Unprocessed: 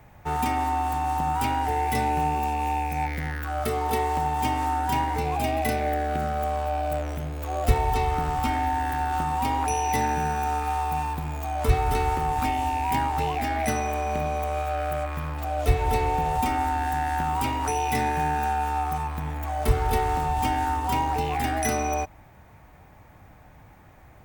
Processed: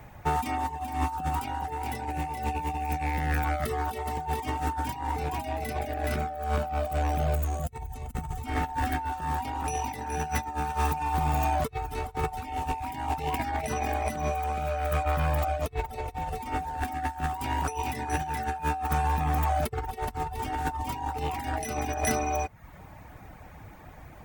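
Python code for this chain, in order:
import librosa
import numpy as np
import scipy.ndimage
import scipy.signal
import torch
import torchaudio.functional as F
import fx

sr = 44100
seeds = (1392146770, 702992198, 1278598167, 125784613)

p1 = x + fx.echo_single(x, sr, ms=421, db=-4.5, dry=0)
p2 = fx.over_compress(p1, sr, threshold_db=-27.0, ratio=-0.5)
p3 = fx.dereverb_blind(p2, sr, rt60_s=0.59)
y = fx.spec_box(p3, sr, start_s=7.35, length_s=1.11, low_hz=270.0, high_hz=5900.0, gain_db=-9)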